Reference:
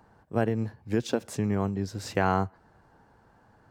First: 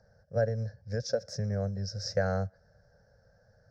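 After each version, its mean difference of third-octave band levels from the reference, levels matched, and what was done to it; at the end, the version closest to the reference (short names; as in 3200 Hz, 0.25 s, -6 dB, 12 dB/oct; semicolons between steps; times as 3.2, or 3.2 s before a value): 6.5 dB: EQ curve 100 Hz 0 dB, 180 Hz -4 dB, 320 Hz -27 dB, 550 Hz +7 dB, 1000 Hz -25 dB, 1600 Hz -2 dB, 2900 Hz -29 dB, 5400 Hz +10 dB, 8300 Hz -22 dB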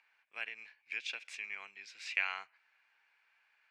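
12.5 dB: ladder band-pass 2500 Hz, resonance 80%; gain +9 dB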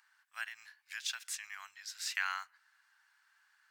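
17.0 dB: inverse Chebyshev high-pass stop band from 480 Hz, stop band 60 dB; gain +2 dB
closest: first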